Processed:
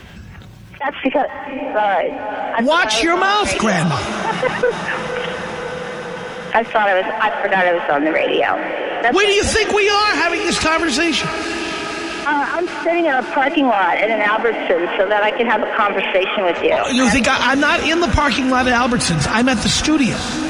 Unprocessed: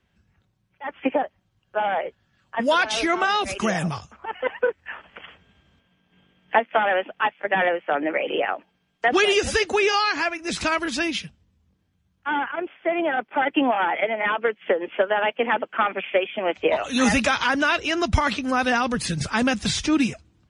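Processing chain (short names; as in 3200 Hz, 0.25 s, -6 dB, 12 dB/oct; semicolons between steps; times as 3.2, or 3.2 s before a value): in parallel at -10 dB: one-sided clip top -25.5 dBFS; 12.33–12.89 on the sum: air absorption 490 m; diffused feedback echo 0.559 s, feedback 61%, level -15 dB; fast leveller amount 50%; gain +1.5 dB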